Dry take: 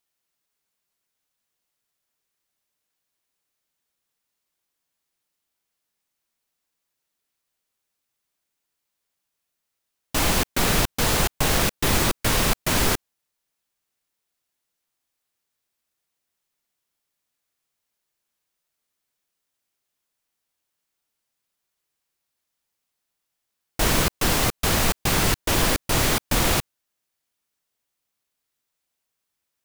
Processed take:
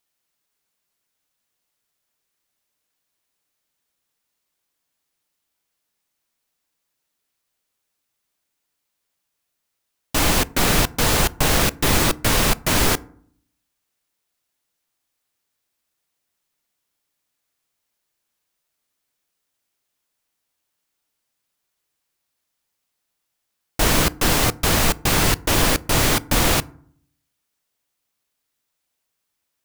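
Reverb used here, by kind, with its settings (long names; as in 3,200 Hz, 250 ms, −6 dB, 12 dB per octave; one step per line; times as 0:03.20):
feedback delay network reverb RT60 0.58 s, low-frequency decay 1.4×, high-frequency decay 0.45×, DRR 18 dB
level +3 dB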